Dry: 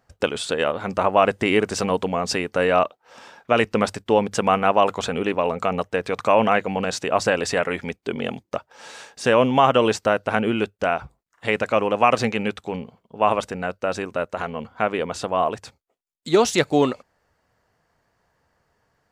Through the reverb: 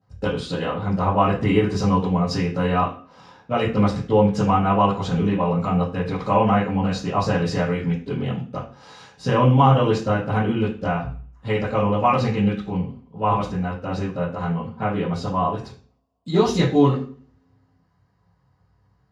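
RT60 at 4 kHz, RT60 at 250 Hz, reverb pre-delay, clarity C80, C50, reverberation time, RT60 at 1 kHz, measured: 0.40 s, 0.60 s, 3 ms, 13.0 dB, 8.0 dB, 0.45 s, 0.40 s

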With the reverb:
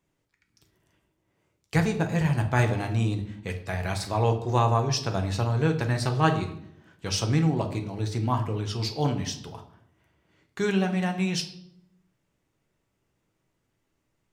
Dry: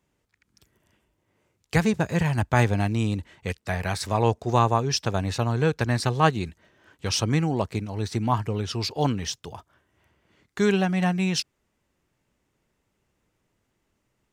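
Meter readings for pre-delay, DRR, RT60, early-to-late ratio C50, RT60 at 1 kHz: 6 ms, 4.5 dB, 0.70 s, 10.5 dB, 0.65 s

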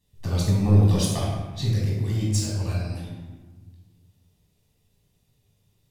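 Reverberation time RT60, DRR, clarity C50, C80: 1.3 s, -5.0 dB, -0.5 dB, 2.5 dB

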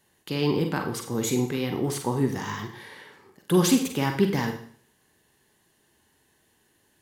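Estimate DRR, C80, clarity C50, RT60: 4.0 dB, 11.5 dB, 8.0 dB, 0.55 s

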